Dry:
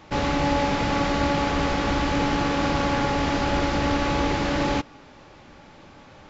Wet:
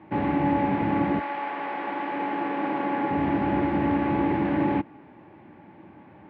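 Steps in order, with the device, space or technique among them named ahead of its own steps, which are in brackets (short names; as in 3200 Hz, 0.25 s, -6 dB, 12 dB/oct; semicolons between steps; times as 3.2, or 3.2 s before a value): bass cabinet (speaker cabinet 83–2200 Hz, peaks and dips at 200 Hz +6 dB, 330 Hz +9 dB, 510 Hz -5 dB, 890 Hz +3 dB, 1300 Hz -9 dB); 1.19–3.1 HPF 840 Hz -> 280 Hz 12 dB/oct; gain -2.5 dB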